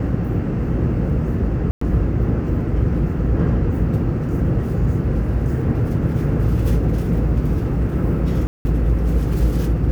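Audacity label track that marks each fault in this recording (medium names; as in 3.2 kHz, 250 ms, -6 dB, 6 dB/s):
1.710000	1.810000	dropout 104 ms
8.470000	8.650000	dropout 180 ms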